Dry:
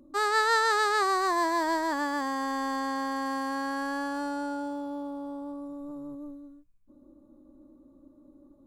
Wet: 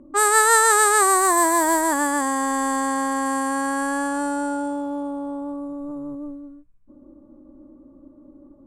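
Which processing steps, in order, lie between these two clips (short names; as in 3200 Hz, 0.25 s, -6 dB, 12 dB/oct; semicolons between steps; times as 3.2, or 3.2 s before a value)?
low-pass opened by the level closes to 1800 Hz, open at -24 dBFS; resonant high shelf 6500 Hz +12 dB, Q 3; gain +8 dB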